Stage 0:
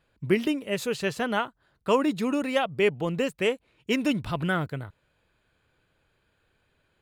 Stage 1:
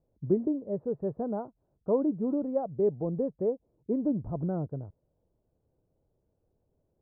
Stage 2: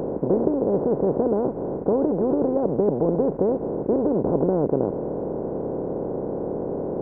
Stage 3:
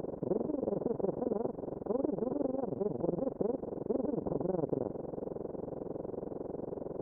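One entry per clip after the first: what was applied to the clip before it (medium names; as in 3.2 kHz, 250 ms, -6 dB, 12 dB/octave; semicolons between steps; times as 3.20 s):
inverse Chebyshev low-pass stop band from 3.1 kHz, stop band 70 dB; trim -2.5 dB
spectral levelling over time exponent 0.2
AM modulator 22 Hz, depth 90%; trim -8.5 dB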